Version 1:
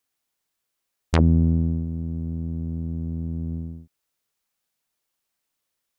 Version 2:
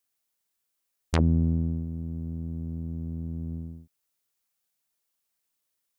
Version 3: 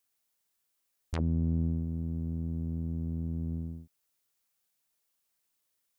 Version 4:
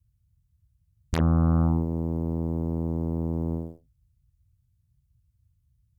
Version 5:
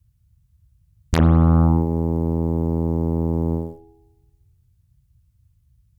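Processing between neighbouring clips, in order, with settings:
high-shelf EQ 6,200 Hz +7 dB; level −5 dB
in parallel at −2.5 dB: downward compressor, threshold −32 dBFS, peak gain reduction 13.5 dB; on the sum: brickwall limiter −17 dBFS, peak gain reduction 9.5 dB; level −4 dB
harmonic generator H 7 −16 dB, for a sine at −20.5 dBFS; noise in a band 37–120 Hz −74 dBFS; level +8 dB
convolution reverb RT60 1.1 s, pre-delay 58 ms, DRR 10.5 dB; level +7.5 dB

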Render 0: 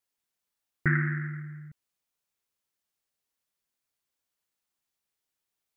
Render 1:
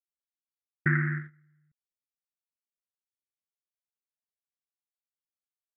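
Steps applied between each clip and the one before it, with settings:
noise gate −31 dBFS, range −25 dB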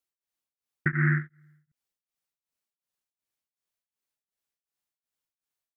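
tremolo along a rectified sine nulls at 2.7 Hz
level +7.5 dB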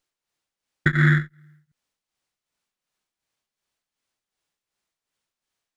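windowed peak hold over 3 samples
level +6.5 dB

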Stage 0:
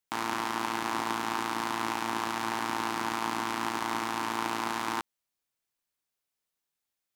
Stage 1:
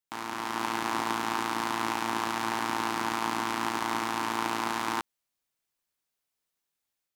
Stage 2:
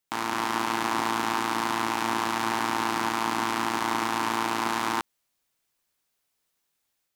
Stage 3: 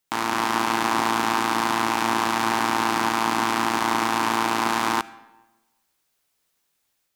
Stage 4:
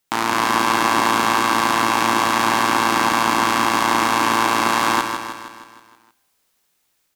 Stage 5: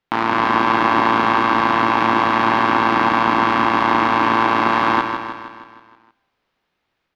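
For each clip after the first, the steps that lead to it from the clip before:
automatic gain control gain up to 6.5 dB; level −5 dB
brickwall limiter −18.5 dBFS, peak gain reduction 7 dB; level +7 dB
convolution reverb RT60 1.1 s, pre-delay 30 ms, DRR 19 dB; level +4.5 dB
repeating echo 157 ms, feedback 55%, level −7 dB; level +4.5 dB
high-frequency loss of the air 320 metres; level +3.5 dB

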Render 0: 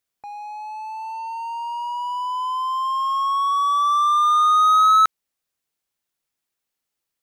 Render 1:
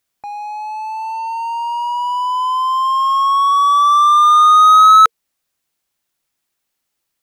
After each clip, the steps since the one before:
notch filter 460 Hz, Q 12
level +7.5 dB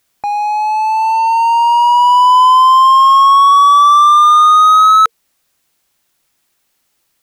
boost into a limiter +12 dB
level −1 dB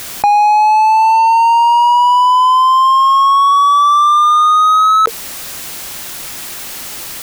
envelope flattener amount 100%
level −2.5 dB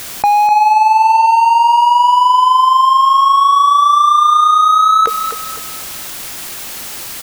repeating echo 251 ms, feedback 36%, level −9 dB
level −1 dB

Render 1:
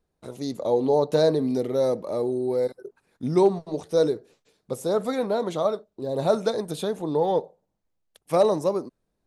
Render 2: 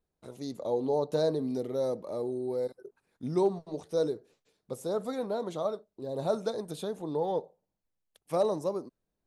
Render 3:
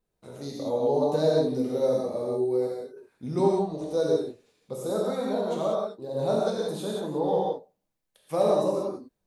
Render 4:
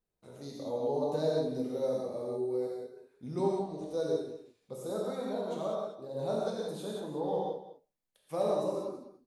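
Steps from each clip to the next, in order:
dynamic equaliser 2,200 Hz, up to −5 dB, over −44 dBFS, Q 1.5; level −7.5 dB
reverb whose tail is shaped and stops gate 210 ms flat, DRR −4 dB
single-tap delay 204 ms −14.5 dB; level −7.5 dB

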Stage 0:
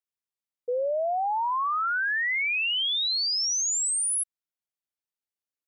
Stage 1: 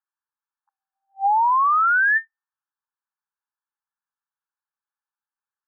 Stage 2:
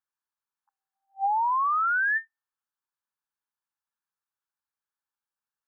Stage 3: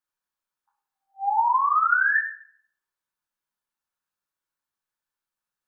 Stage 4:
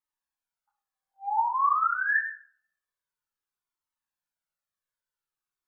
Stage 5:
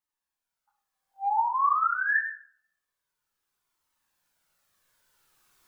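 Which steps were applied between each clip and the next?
brick-wall band-pass 780–1,800 Hz; level +9 dB
downward compressor, threshold −21 dBFS, peak gain reduction 5 dB; level −2 dB
rectangular room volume 120 cubic metres, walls mixed, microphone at 0.97 metres
flanger whose copies keep moving one way falling 0.52 Hz
camcorder AGC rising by 7.6 dB per second

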